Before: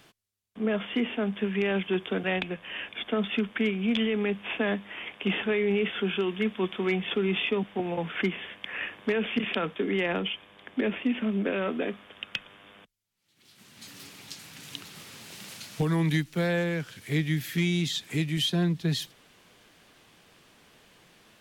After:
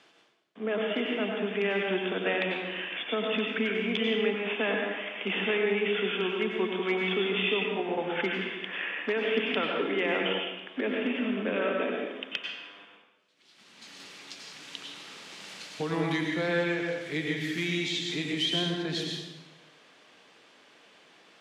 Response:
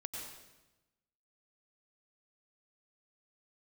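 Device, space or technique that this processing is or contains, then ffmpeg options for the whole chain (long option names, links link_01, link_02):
supermarket ceiling speaker: -filter_complex "[0:a]highpass=300,lowpass=5800[link_01];[1:a]atrim=start_sample=2205[link_02];[link_01][link_02]afir=irnorm=-1:irlink=0,volume=3dB"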